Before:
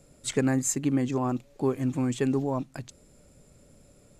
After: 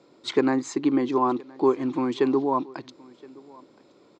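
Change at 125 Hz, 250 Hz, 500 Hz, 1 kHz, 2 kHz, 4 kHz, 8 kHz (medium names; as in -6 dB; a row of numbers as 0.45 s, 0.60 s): -10.0 dB, +3.0 dB, +6.5 dB, +9.5 dB, +2.0 dB, +4.5 dB, under -10 dB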